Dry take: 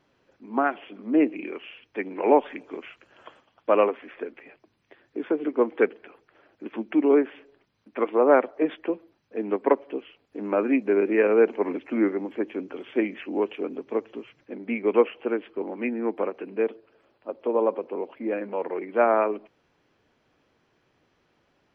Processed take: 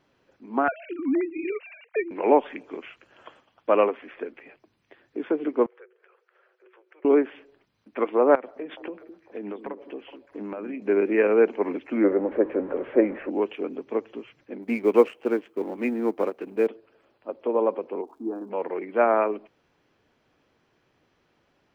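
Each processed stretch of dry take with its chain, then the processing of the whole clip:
0.68–2.11 sine-wave speech + steep low-pass 2900 Hz 72 dB/oct + three-band squash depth 100%
5.66–7.05 rippled Chebyshev high-pass 360 Hz, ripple 9 dB + compressor 2.5:1, threshold -58 dBFS
8.35–10.82 compressor 12:1, threshold -30 dBFS + delay with a stepping band-pass 0.21 s, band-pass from 260 Hz, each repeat 1.4 oct, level -7.5 dB
12.04–13.3 zero-crossing step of -37.5 dBFS + LPF 1900 Hz 24 dB/oct + bell 540 Hz +13 dB 0.63 oct
14.62–16.67 G.711 law mismatch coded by A + HPF 140 Hz 6 dB/oct + low shelf 480 Hz +5.5 dB
18.01–18.49 LPF 1300 Hz 24 dB/oct + fixed phaser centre 550 Hz, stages 6 + crackle 510/s -62 dBFS
whole clip: dry

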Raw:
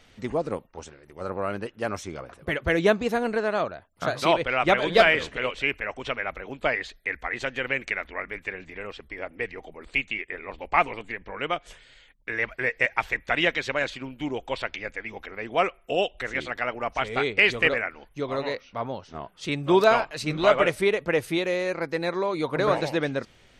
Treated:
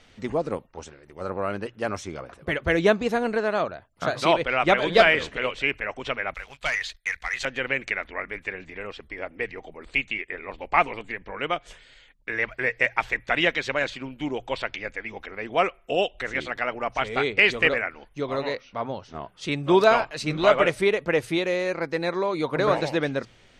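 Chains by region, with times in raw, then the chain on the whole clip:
6.34–7.45 passive tone stack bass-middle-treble 10-0-10 + sample leveller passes 2
whole clip: LPF 9700 Hz 12 dB/oct; notches 60/120 Hz; gain +1 dB

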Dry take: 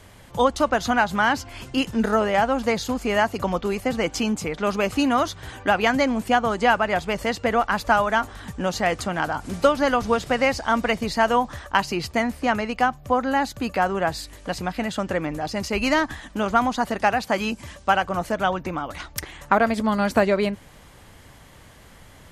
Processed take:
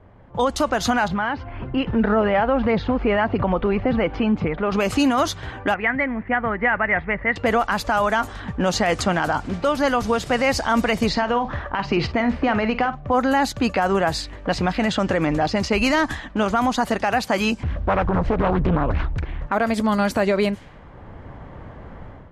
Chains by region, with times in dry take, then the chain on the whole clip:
1.08–4.72 compressor 2:1, threshold -29 dBFS + phaser 1.8 Hz, delay 2.5 ms, feedback 25% + air absorption 290 m
5.74–7.36 ladder low-pass 2100 Hz, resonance 75% + low shelf 190 Hz +7.5 dB
11.09–13.08 LPF 5800 Hz + compressor 10:1, threshold -24 dBFS + doubler 50 ms -13 dB
17.63–19.47 RIAA curve playback + compressor 2:1, threshold -28 dBFS + Doppler distortion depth 0.78 ms
whole clip: low-pass opened by the level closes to 960 Hz, open at -19 dBFS; AGC; limiter -10 dBFS

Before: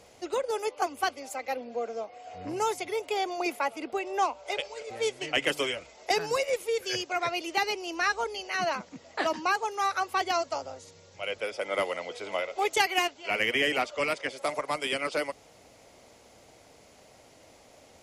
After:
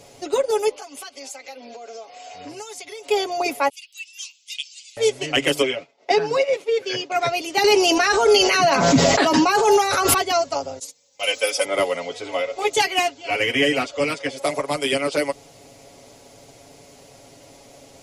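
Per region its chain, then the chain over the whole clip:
0.76–3.09 LPF 6600 Hz + tilt +3.5 dB/oct + compressor, threshold -42 dBFS
3.69–4.97 expander -45 dBFS + Chebyshev high-pass 2800 Hz, order 4
5.62–7.12 BPF 170–3700 Hz + expander -44 dBFS
7.64–10.14 de-hum 171.2 Hz, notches 11 + fast leveller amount 100%
10.79–11.65 gate -50 dBFS, range -21 dB + RIAA curve recording + comb 3.9 ms, depth 87%
12.15–14.37 LPF 10000 Hz + notch comb 200 Hz
whole clip: bell 1500 Hz -6 dB 2.1 oct; comb 7.2 ms; gain +9 dB

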